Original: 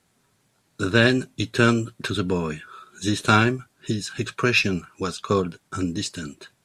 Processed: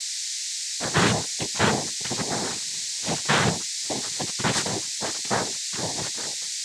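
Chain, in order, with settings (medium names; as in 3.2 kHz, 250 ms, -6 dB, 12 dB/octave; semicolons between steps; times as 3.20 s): full-wave rectifier; whistle 4.7 kHz -28 dBFS; noise-vocoded speech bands 6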